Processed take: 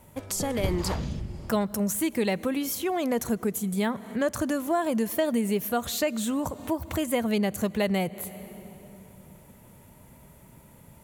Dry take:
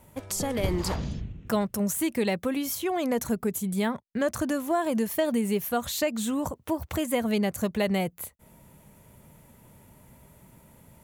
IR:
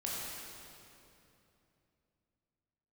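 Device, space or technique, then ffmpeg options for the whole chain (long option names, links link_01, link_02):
ducked reverb: -filter_complex "[0:a]asplit=3[link_01][link_02][link_03];[1:a]atrim=start_sample=2205[link_04];[link_02][link_04]afir=irnorm=-1:irlink=0[link_05];[link_03]apad=whole_len=486606[link_06];[link_05][link_06]sidechaincompress=threshold=-38dB:ratio=12:attack=16:release=165,volume=-12dB[link_07];[link_01][link_07]amix=inputs=2:normalize=0"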